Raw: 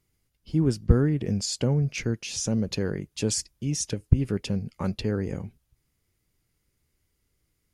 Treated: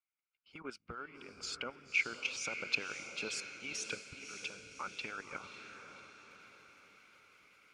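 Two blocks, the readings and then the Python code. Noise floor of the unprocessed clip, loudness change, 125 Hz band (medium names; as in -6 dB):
-76 dBFS, -13.0 dB, -35.0 dB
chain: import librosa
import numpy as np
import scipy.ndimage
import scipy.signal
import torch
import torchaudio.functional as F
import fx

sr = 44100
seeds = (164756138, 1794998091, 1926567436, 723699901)

y = fx.recorder_agc(x, sr, target_db=-8.5, rise_db_per_s=14.0, max_gain_db=30)
y = fx.double_bandpass(y, sr, hz=1800.0, octaves=0.7)
y = fx.level_steps(y, sr, step_db=11)
y = fx.hpss(y, sr, part='harmonic', gain_db=-17)
y = fx.echo_diffused(y, sr, ms=574, feedback_pct=52, wet_db=-8)
y = y * 10.0 ** (4.5 / 20.0)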